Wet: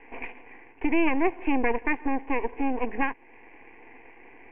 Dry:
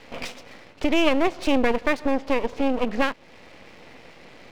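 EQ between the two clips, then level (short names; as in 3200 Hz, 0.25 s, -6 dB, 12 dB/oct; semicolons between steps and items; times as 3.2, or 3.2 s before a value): elliptic low-pass 2500 Hz, stop band 50 dB; bell 76 Hz -14 dB 0.55 oct; fixed phaser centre 870 Hz, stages 8; 0.0 dB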